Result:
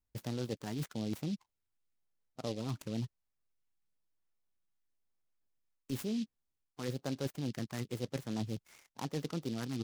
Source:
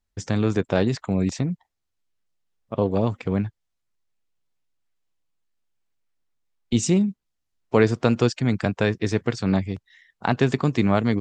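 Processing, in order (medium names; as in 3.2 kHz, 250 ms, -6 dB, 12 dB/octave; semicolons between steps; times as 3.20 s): dynamic bell 3.1 kHz, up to -5 dB, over -40 dBFS, Q 0.96; reverse; compression 6:1, threshold -27 dBFS, peak gain reduction 14.5 dB; reverse; tape speed +14%; LFO notch sine 1 Hz 500–5400 Hz; delay time shaken by noise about 3.8 kHz, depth 0.08 ms; trim -6.5 dB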